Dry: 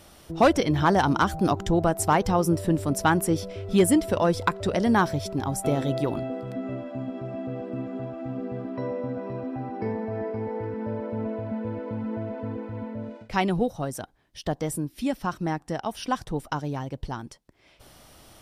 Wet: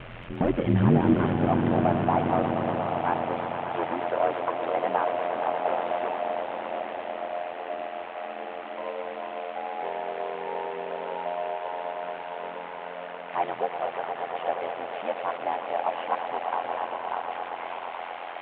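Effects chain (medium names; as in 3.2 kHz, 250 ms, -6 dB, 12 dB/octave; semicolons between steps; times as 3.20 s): one-bit delta coder 16 kbps, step -33.5 dBFS; high-pass sweep 68 Hz -> 700 Hz, 0.47–1.55 s; echo with a slow build-up 118 ms, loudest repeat 5, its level -10.5 dB; ring modulator 43 Hz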